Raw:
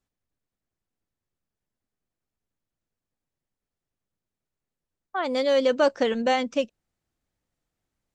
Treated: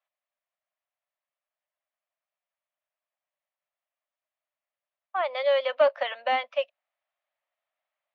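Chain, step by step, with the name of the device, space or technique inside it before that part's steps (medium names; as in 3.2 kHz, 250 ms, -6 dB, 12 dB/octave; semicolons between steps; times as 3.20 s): elliptic high-pass 610 Hz, stop band 40 dB; overdrive pedal into a guitar cabinet (overdrive pedal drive 10 dB, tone 2.3 kHz, clips at -11 dBFS; cabinet simulation 110–3500 Hz, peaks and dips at 560 Hz +5 dB, 860 Hz -4 dB, 1.5 kHz -6 dB)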